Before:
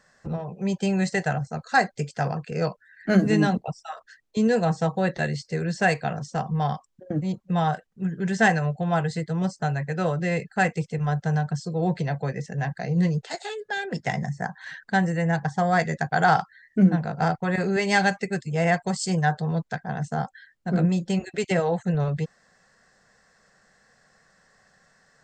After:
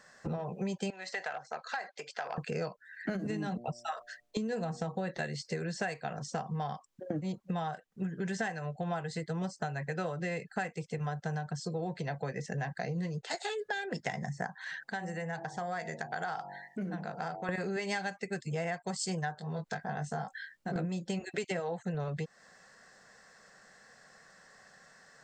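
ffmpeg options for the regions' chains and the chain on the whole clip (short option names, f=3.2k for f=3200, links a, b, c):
-filter_complex "[0:a]asettb=1/sr,asplit=3[a][b][c];[a]atrim=end=0.904[d];[b]atrim=start=0.9:end=2.38,asetpts=PTS-STARTPTS,afade=t=in:d=0.004:c=qsin,afade=t=out:st=1.476:d=0.004:c=qsin,acompressor=threshold=-28dB:ratio=6:attack=3.2:release=140:knee=1:detection=peak,aeval=exprs='clip(val(0),-1,0.0501)':c=same,highpass=670,lowpass=4.4k[e];[c]atrim=start=2.376[f];[d][e]acrossfade=d=0.004:c1=hsin:c2=qsin[g];[g][f]acrossfade=d=0.004:c1=qsin:c2=hsin,asettb=1/sr,asplit=3[h][i][j];[h]atrim=end=3.094[k];[i]atrim=start=3.09:end=5.09,asetpts=PTS-STARTPTS,afade=t=in:d=0.004:c=qsin,afade=t=out:st=1.996:d=0.004:c=qsin,lowshelf=f=240:g=7,bandreject=f=119:t=h:w=4,bandreject=f=238:t=h:w=4,bandreject=f=357:t=h:w=4,bandreject=f=476:t=h:w=4,bandreject=f=595:t=h:w=4,bandreject=f=714:t=h:w=4,acompressor=threshold=-19dB:ratio=6:attack=3.2:release=140:knee=1:detection=peak[l];[j]atrim=start=5.086[m];[k][l]acrossfade=d=0.004:c1=hsin:c2=qsin[n];[n][m]acrossfade=d=0.004:c1=qsin:c2=hsin,asettb=1/sr,asplit=3[o][p][q];[o]atrim=end=14.584[r];[p]atrim=start=14.58:end=17.49,asetpts=PTS-STARTPTS,afade=t=in:d=0.004:c=qsin,afade=t=out:st=2.906:d=0.004:c=qsin,lowshelf=f=130:g=-8.5,bandreject=f=47.49:t=h:w=4,bandreject=f=94.98:t=h:w=4,bandreject=f=142.47:t=h:w=4,bandreject=f=189.96:t=h:w=4,bandreject=f=237.45:t=h:w=4,bandreject=f=284.94:t=h:w=4,bandreject=f=332.43:t=h:w=4,bandreject=f=379.92:t=h:w=4,bandreject=f=427.41:t=h:w=4,bandreject=f=474.9:t=h:w=4,bandreject=f=522.39:t=h:w=4,bandreject=f=569.88:t=h:w=4,bandreject=f=617.37:t=h:w=4,bandreject=f=664.86:t=h:w=4,bandreject=f=712.35:t=h:w=4,bandreject=f=759.84:t=h:w=4,bandreject=f=807.33:t=h:w=4,bandreject=f=854.82:t=h:w=4,bandreject=f=902.31:t=h:w=4,bandreject=f=949.8:t=h:w=4,acompressor=threshold=-43dB:ratio=2:attack=3.2:release=140:knee=1:detection=peak[s];[q]atrim=start=17.486[t];[r][s]acrossfade=d=0.004:c1=hsin:c2=qsin[u];[u][t]acrossfade=d=0.004:c1=qsin:c2=hsin,asettb=1/sr,asplit=3[v][w][x];[v]atrim=end=19.354[y];[w]atrim=start=19.35:end=20.76,asetpts=PTS-STARTPTS,afade=t=in:d=0.004:c=qsin,afade=t=out:st=1.406:d=0.004:c=qsin,acompressor=threshold=-37dB:ratio=2:attack=3.2:release=140:knee=1:detection=peak,asplit=2[z][aa];[aa]adelay=20,volume=-3dB[ab];[z][ab]amix=inputs=2:normalize=0,atrim=end_sample=62181[ac];[x]atrim=start=20.756[ad];[y][ac]acrossfade=d=0.004:c1=hsin:c2=qsin[ae];[ae][ad]acrossfade=d=0.004:c1=qsin:c2=hsin,lowshelf=f=140:g=-10.5,acompressor=threshold=-35dB:ratio=10,volume=3dB"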